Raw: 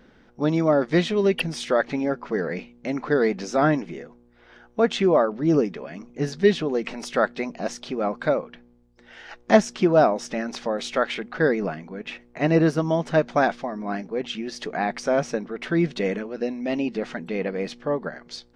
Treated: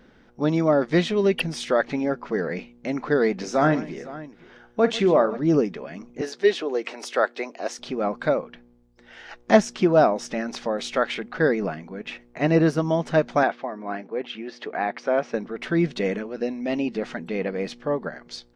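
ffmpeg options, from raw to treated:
ffmpeg -i in.wav -filter_complex "[0:a]asplit=3[link_01][link_02][link_03];[link_01]afade=type=out:start_time=3.4:duration=0.02[link_04];[link_02]aecho=1:1:44|142|509:0.211|0.119|0.141,afade=type=in:start_time=3.4:duration=0.02,afade=type=out:start_time=5.37:duration=0.02[link_05];[link_03]afade=type=in:start_time=5.37:duration=0.02[link_06];[link_04][link_05][link_06]amix=inputs=3:normalize=0,asettb=1/sr,asplit=3[link_07][link_08][link_09];[link_07]atrim=end=6.214[link_10];[link_08]atrim=start=6.21:end=7.79,asetpts=PTS-STARTPTS,afade=type=in:duration=0.004:curve=qsin,afade=type=out:start_time=1.576:duration=0.004:curve=qsin,highpass=frequency=320:width=0.5412,highpass=frequency=320:width=1.3066[link_11];[link_09]atrim=start=7.786[link_12];[link_10][link_11]acrossfade=duration=0.004:curve1=hsin:curve2=qsin[link_13];[link_13][link_12]acrossfade=duration=0.004:curve1=qsin:curve2=hsin,asettb=1/sr,asplit=3[link_14][link_15][link_16];[link_14]atrim=end=13.434[link_17];[link_15]atrim=start=13.43:end=15.34,asetpts=PTS-STARTPTS,afade=type=in:duration=0.004:curve=qsin,afade=type=out:start_time=1.906:duration=0.004:curve=qsin,highpass=290,lowpass=3000[link_18];[link_16]atrim=start=15.336[link_19];[link_17][link_18]acrossfade=duration=0.004:curve1=hsin:curve2=qsin[link_20];[link_20][link_19]acrossfade=duration=0.004:curve1=qsin:curve2=hsin" out.wav

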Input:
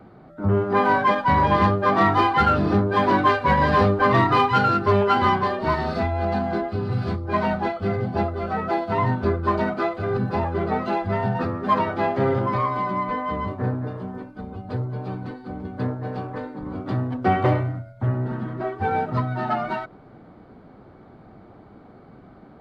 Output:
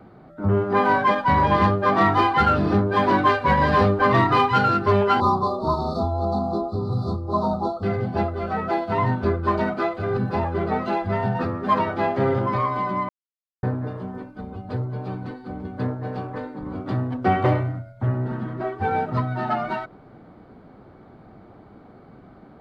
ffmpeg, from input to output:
ffmpeg -i in.wav -filter_complex "[0:a]asettb=1/sr,asplit=3[link_01][link_02][link_03];[link_01]atrim=end=5.204[link_04];[link_02]atrim=start=5.2:end=7.83,asetpts=PTS-STARTPTS,afade=type=in:duration=0.004:curve=qsin,afade=type=out:start_time=2.626:duration=0.004:curve=qsin,asuperstop=centerf=2200:order=20:qfactor=0.97[link_05];[link_03]atrim=start=7.826[link_06];[link_04][link_05]acrossfade=duration=0.004:curve1=hsin:curve2=qsin[link_07];[link_07][link_06]acrossfade=duration=0.004:curve1=qsin:curve2=hsin,asplit=3[link_08][link_09][link_10];[link_08]atrim=end=13.09,asetpts=PTS-STARTPTS,afade=type=out:start_time=13.086:duration=0.004:curve=hsin[link_11];[link_09]atrim=start=13.09:end=13.63,asetpts=PTS-STARTPTS,volume=0[link_12];[link_10]atrim=start=13.63,asetpts=PTS-STARTPTS,afade=type=in:duration=0.004:curve=hsin[link_13];[link_11][link_12][link_13]concat=n=3:v=0:a=1" out.wav

